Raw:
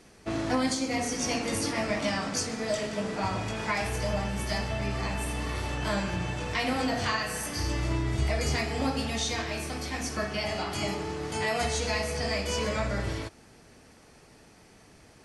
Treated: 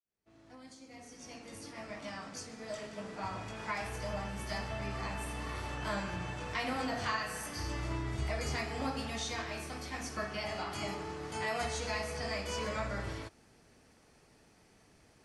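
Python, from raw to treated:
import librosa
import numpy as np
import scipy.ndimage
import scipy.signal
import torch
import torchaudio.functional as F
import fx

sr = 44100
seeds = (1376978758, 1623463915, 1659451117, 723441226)

y = fx.fade_in_head(x, sr, length_s=4.76)
y = fx.dynamic_eq(y, sr, hz=1200.0, q=1.0, threshold_db=-43.0, ratio=4.0, max_db=5)
y = F.gain(torch.from_numpy(y), -8.5).numpy()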